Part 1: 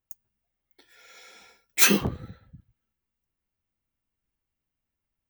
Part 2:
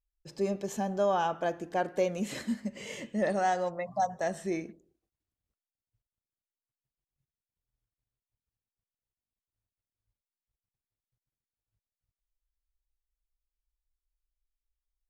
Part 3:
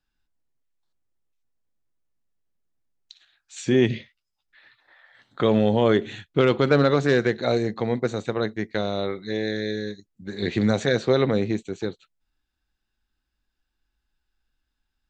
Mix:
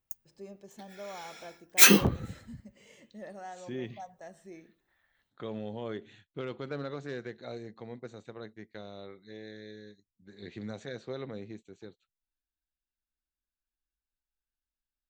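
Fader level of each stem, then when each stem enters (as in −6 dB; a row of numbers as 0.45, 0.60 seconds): +1.5, −16.0, −19.0 decibels; 0.00, 0.00, 0.00 seconds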